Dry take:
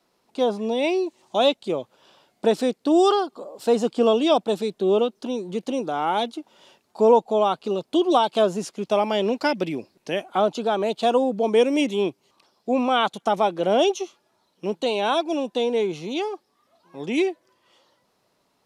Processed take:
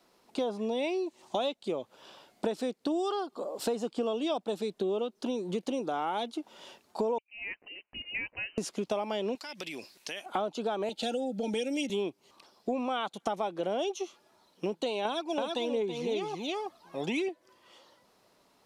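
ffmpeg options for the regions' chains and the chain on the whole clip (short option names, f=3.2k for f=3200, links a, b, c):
-filter_complex "[0:a]asettb=1/sr,asplit=3[a][b][c];[a]atrim=end=7.184[d];[b]atrim=start=7.18:end=8.58,asetpts=PTS-STARTPTS,afade=t=in:d=0.004:c=qsin,afade=t=out:st=1.396:d=0.004:c=qsin,aderivative,lowpass=f=2.7k:t=q:w=0.5098,lowpass=f=2.7k:t=q:w=0.6013,lowpass=f=2.7k:t=q:w=0.9,lowpass=f=2.7k:t=q:w=2.563,afreqshift=-3200[e];[c]atrim=start=8.576[f];[d][e]acrossfade=d=0.004:c1=hsin:c2=qsin[g];[g][f]acrossfade=d=0.004:c1=qsin:c2=hsin,asettb=1/sr,asplit=3[h][i][j];[h]atrim=end=9.354[k];[i]atrim=start=9.35:end=10.26,asetpts=PTS-STARTPTS,afade=t=in:d=0.004:c=qsin,afade=t=out:st=0.906:d=0.004:c=qsin,tiltshelf=f=1.1k:g=-10,acompressor=threshold=-38dB:ratio=6:attack=3.2:release=140:knee=1:detection=peak[l];[j]atrim=start=10.256[m];[k][l]acrossfade=d=0.004:c1=hsin:c2=qsin[n];[n][m]acrossfade=d=0.004:c1=qsin:c2=hsin,asettb=1/sr,asplit=3[o][p][q];[o]atrim=end=10.894[r];[p]atrim=start=10.89:end=11.9,asetpts=PTS-STARTPTS,afade=t=in:d=0.004:c=qsin,afade=t=out:st=1.006:d=0.004:c=qsin,asuperstop=centerf=1100:order=20:qfactor=3,aecho=1:1:3.7:0.61,atrim=end_sample=44541,acrossover=split=130|3000[s][t][u];[t]acompressor=threshold=-33dB:ratio=2:attack=3.2:release=140:knee=2.83:detection=peak[v];[s][v][u]amix=inputs=3:normalize=0[w];[q]atrim=start=11.896[x];[r][w]acrossfade=d=0.004:c1=hsin:c2=qsin[y];[y][x]acrossfade=d=0.004:c1=qsin:c2=hsin,asettb=1/sr,asplit=3[z][aa][ab];[z]atrim=end=15.054[ac];[aa]atrim=start=15.05:end=17.29,asetpts=PTS-STARTPTS,afade=t=in:d=0.004:c=qsin,afade=t=out:st=2.236:d=0.004:c=qsin,aphaser=in_gain=1:out_gain=1:delay=1.7:decay=0.53:speed=1.3:type=triangular,aecho=1:1:328:0.531,atrim=end_sample=98784[ad];[ab]atrim=start=17.286[ae];[ac][ad]acrossfade=d=0.004:c1=hsin:c2=qsin[af];[af][ae]acrossfade=d=0.004:c1=qsin:c2=hsin,equalizer=f=130:t=o:w=0.7:g=-4.5,acompressor=threshold=-32dB:ratio=6,volume=2.5dB"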